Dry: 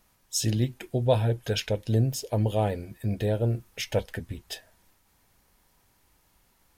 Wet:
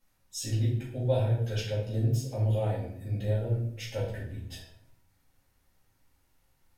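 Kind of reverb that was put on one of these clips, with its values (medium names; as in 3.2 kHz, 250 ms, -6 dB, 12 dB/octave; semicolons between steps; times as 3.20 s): simulated room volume 140 m³, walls mixed, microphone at 2.2 m; trim -15 dB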